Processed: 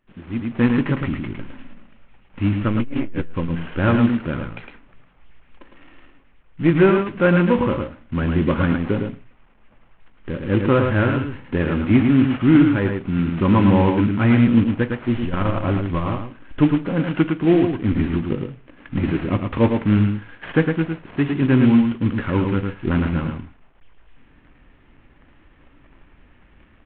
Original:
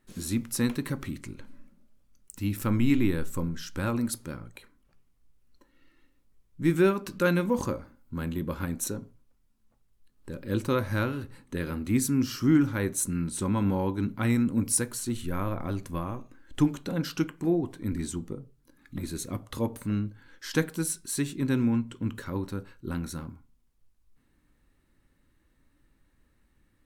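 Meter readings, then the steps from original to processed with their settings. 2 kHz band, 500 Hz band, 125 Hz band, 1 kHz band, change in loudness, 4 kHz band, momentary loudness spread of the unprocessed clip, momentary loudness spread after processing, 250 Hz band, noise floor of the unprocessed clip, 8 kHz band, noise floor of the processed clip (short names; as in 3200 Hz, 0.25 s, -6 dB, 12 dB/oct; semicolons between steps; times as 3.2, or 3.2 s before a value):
+10.0 dB, +10.0 dB, +10.5 dB, +10.5 dB, +9.5 dB, +4.5 dB, 14 LU, 13 LU, +10.5 dB, -68 dBFS, under -40 dB, -53 dBFS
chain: CVSD 16 kbps; on a send: echo 0.108 s -5.5 dB; on the sum: AGC gain up to 16 dB; core saturation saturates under 120 Hz; gain -1.5 dB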